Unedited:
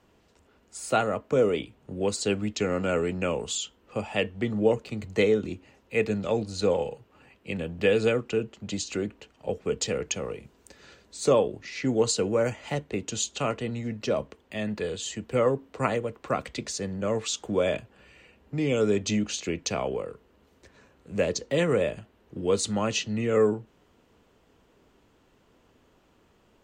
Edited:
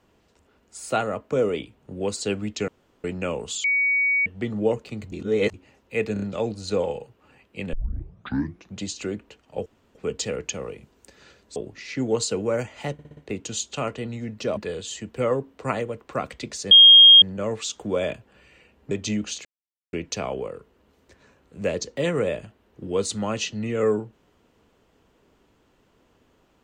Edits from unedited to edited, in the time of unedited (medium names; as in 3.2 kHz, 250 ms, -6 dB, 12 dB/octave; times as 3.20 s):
2.68–3.04 s: room tone
3.64–4.26 s: bleep 2.25 kHz -18 dBFS
5.12–5.54 s: reverse
6.13 s: stutter 0.03 s, 4 plays
7.64 s: tape start 1.05 s
9.57 s: insert room tone 0.29 s
11.18–11.43 s: delete
12.80 s: stutter 0.06 s, 5 plays
14.20–14.72 s: delete
16.86 s: add tone 3.24 kHz -6.5 dBFS 0.51 s
18.55–18.93 s: delete
19.47 s: insert silence 0.48 s